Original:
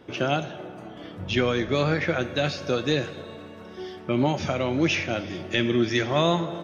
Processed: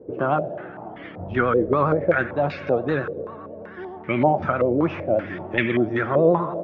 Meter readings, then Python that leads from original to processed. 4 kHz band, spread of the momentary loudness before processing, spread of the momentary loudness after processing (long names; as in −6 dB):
−13.5 dB, 17 LU, 17 LU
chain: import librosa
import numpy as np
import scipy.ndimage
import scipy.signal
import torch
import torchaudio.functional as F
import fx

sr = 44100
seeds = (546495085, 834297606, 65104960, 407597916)

y = fx.vibrato(x, sr, rate_hz=9.7, depth_cents=68.0)
y = fx.filter_held_lowpass(y, sr, hz=5.2, low_hz=480.0, high_hz=2100.0)